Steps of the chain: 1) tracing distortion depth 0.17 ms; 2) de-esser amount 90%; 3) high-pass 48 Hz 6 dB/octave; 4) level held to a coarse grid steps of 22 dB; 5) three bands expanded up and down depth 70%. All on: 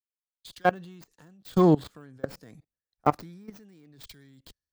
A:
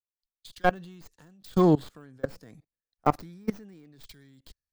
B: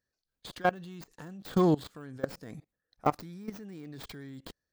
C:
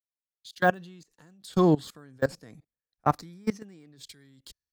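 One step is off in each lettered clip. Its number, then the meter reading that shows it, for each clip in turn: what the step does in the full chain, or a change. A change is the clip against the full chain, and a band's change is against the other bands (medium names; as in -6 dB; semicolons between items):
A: 3, momentary loudness spread change -3 LU; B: 5, 4 kHz band +4.0 dB; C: 1, 2 kHz band +5.0 dB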